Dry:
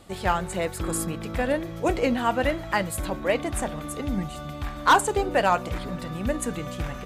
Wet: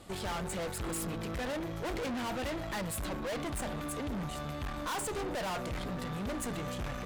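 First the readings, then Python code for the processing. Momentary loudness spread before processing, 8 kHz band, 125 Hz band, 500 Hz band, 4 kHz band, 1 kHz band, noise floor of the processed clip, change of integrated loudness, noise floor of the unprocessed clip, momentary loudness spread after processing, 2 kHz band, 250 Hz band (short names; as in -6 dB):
11 LU, -7.0 dB, -7.0 dB, -11.0 dB, -7.0 dB, -14.0 dB, -39 dBFS, -10.5 dB, -37 dBFS, 3 LU, -12.0 dB, -8.5 dB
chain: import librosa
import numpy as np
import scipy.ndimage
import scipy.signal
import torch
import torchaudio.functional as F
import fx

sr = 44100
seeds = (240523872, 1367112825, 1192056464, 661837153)

y = fx.tube_stage(x, sr, drive_db=36.0, bias=0.65)
y = y * librosa.db_to_amplitude(2.0)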